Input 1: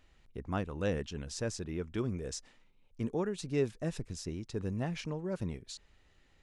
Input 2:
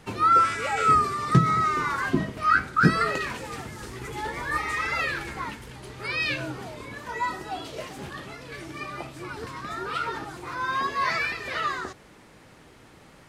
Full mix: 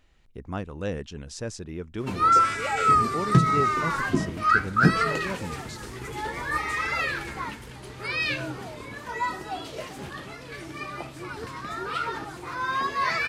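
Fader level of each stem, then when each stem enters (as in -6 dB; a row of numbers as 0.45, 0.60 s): +2.0, 0.0 dB; 0.00, 2.00 s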